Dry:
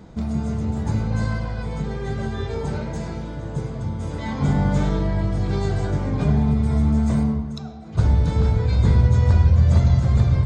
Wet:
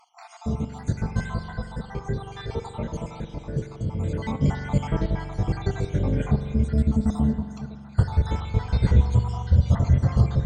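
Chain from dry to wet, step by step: random spectral dropouts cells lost 59%; spring tank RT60 2.7 s, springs 43 ms, chirp 30 ms, DRR 8 dB

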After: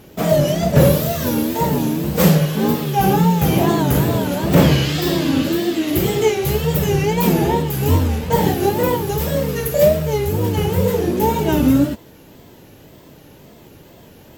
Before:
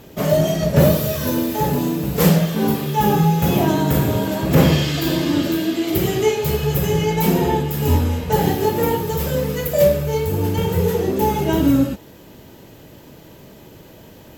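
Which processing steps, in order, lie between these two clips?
in parallel at -10.5 dB: bit-crush 5-bit; on the sum: wow and flutter 140 cents; gain -1 dB

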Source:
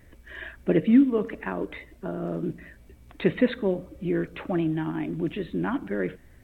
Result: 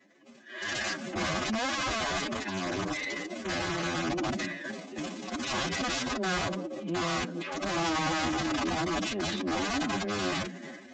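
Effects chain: half-wave gain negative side -7 dB; recorder AGC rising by 47 dB/s; steep high-pass 190 Hz 36 dB/oct; bell 1700 Hz -2.5 dB 0.57 oct; notches 60/120/180/240 Hz; transient shaper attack -10 dB, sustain +12 dB; wrapped overs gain 22 dB; downsampling 16000 Hz; time stretch by phase-locked vocoder 1.7×; notch comb 460 Hz; gain -1.5 dB

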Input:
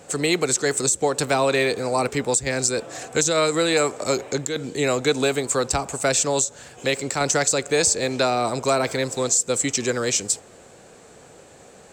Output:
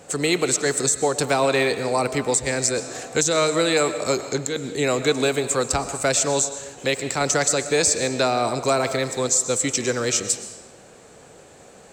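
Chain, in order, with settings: digital reverb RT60 1.1 s, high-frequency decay 0.9×, pre-delay 80 ms, DRR 11 dB

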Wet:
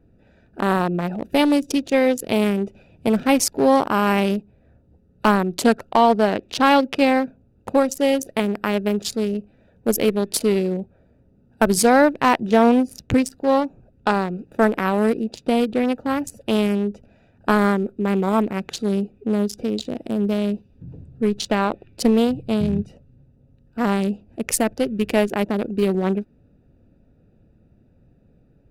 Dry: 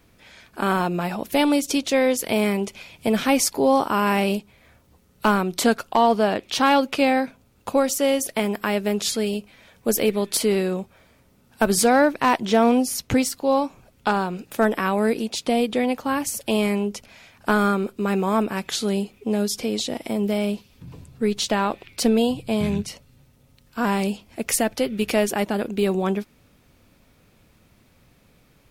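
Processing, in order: Wiener smoothing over 41 samples; gain +3 dB

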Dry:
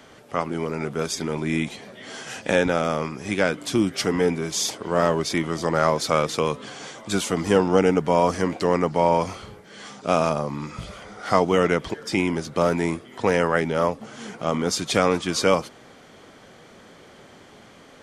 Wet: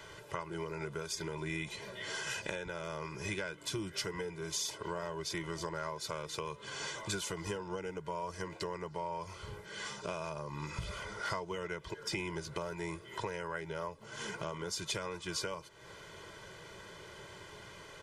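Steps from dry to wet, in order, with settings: comb 2 ms, depth 99%; compressor 6:1, threshold -31 dBFS, peak gain reduction 20 dB; bell 510 Hz -8.5 dB 0.44 oct; gain -3.5 dB

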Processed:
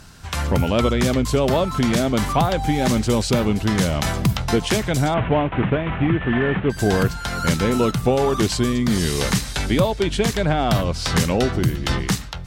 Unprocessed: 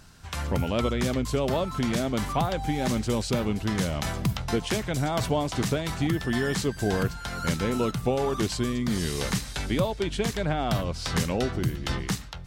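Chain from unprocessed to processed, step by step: 5.14–6.7 CVSD 16 kbps; added harmonics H 5 -33 dB, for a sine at -12.5 dBFS; gain +7 dB

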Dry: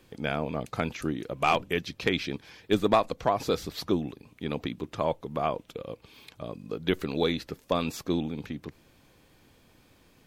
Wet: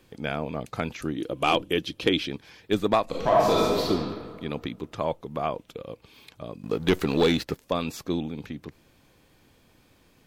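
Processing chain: 1.17–2.28 thirty-one-band EQ 315 Hz +11 dB, 500 Hz +5 dB, 2000 Hz -3 dB, 3150 Hz +8 dB, 10000 Hz +7 dB; 3.04–3.9 reverb throw, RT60 1.8 s, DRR -6 dB; 6.63–7.6 sample leveller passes 2

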